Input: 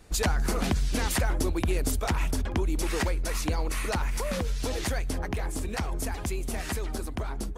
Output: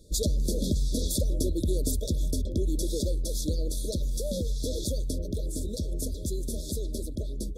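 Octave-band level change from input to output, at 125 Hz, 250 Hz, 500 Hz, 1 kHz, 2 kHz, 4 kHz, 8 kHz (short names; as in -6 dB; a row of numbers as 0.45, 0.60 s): 0.0 dB, 0.0 dB, -0.5 dB, under -30 dB, under -40 dB, -1.0 dB, 0.0 dB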